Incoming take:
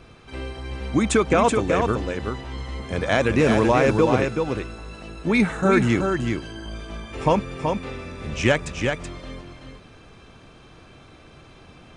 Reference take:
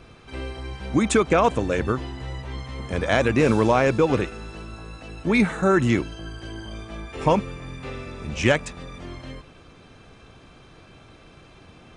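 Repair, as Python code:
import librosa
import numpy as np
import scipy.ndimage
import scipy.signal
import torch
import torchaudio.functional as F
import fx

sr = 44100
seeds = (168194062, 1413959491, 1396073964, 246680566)

y = fx.fix_echo_inverse(x, sr, delay_ms=378, level_db=-5.0)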